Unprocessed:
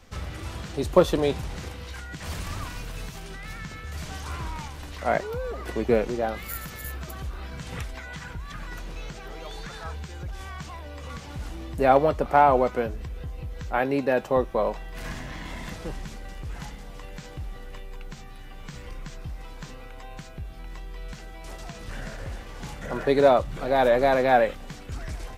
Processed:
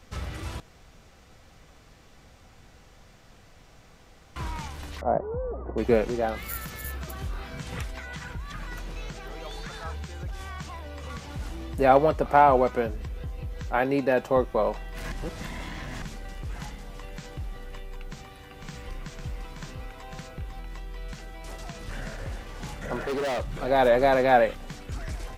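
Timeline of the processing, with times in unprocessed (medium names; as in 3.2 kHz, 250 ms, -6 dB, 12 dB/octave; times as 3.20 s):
0.60–4.36 s: room tone
5.01–5.78 s: low-pass 1 kHz 24 dB/octave
7.18–7.62 s: doubling 23 ms -5 dB
15.12–16.02 s: reverse
17.63–20.60 s: delay 501 ms -5 dB
22.96–23.55 s: overload inside the chain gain 26.5 dB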